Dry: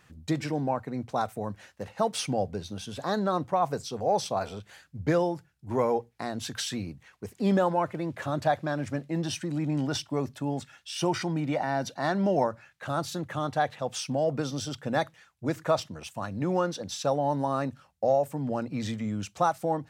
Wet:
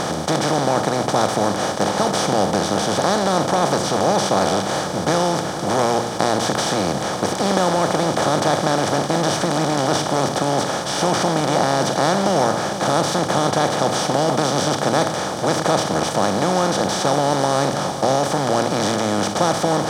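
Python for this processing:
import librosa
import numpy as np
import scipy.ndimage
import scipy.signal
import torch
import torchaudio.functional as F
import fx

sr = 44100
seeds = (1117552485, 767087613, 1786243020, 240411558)

y = fx.bin_compress(x, sr, power=0.2)
y = fx.peak_eq(y, sr, hz=6300.0, db=4.0, octaves=1.6)
y = fx.notch(y, sr, hz=2700.0, q=11.0)
y = fx.echo_alternate(y, sr, ms=459, hz=1300.0, feedback_pct=60, wet_db=-12.0)
y = F.gain(torch.from_numpy(y), -1.0).numpy()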